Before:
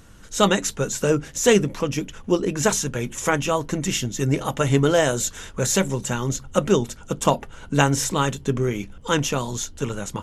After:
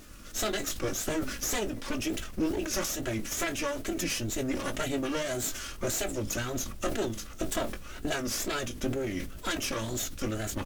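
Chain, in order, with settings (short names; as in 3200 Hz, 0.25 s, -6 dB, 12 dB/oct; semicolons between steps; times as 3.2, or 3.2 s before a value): minimum comb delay 3.1 ms; bell 960 Hz -11 dB 0.33 oct; compressor, threshold -29 dBFS, peak gain reduction 13.5 dB; requantised 10-bit, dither triangular; wow and flutter 150 cents; doubler 18 ms -11 dB; speed mistake 25 fps video run at 24 fps; sustainer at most 60 dB/s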